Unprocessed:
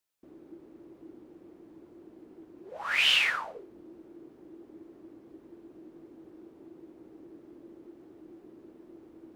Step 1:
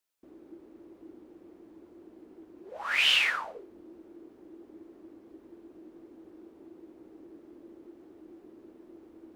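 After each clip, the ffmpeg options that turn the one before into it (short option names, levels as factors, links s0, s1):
-af "equalizer=f=140:t=o:w=0.34:g=-13.5"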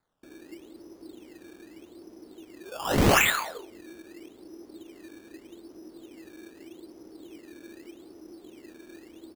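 -filter_complex "[0:a]acrusher=samples=15:mix=1:aa=0.000001:lfo=1:lforange=15:lforate=0.82,asplit=2[s0][s1];[s1]adelay=180.8,volume=0.112,highshelf=f=4000:g=-4.07[s2];[s0][s2]amix=inputs=2:normalize=0,volume=1.58"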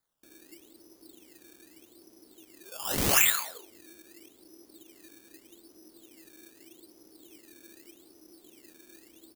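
-af "crystalizer=i=4.5:c=0,volume=0.316"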